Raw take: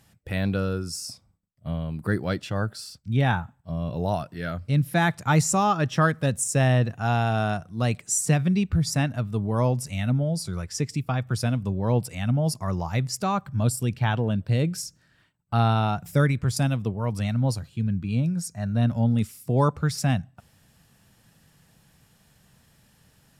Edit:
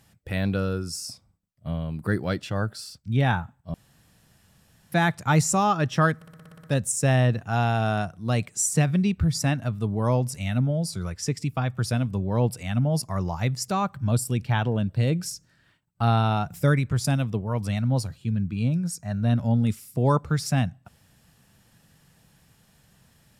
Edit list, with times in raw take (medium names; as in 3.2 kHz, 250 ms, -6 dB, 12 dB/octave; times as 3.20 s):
3.74–4.92 s: room tone
6.16 s: stutter 0.06 s, 9 plays